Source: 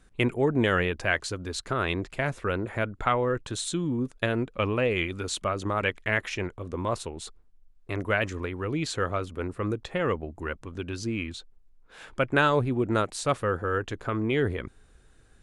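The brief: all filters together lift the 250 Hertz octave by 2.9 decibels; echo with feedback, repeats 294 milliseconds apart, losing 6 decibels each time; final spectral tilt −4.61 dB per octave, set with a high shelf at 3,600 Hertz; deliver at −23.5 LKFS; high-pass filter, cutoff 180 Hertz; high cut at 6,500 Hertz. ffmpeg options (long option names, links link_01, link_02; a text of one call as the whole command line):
ffmpeg -i in.wav -af "highpass=180,lowpass=6500,equalizer=frequency=250:width_type=o:gain=5,highshelf=frequency=3600:gain=-7.5,aecho=1:1:294|588|882|1176|1470|1764:0.501|0.251|0.125|0.0626|0.0313|0.0157,volume=4dB" out.wav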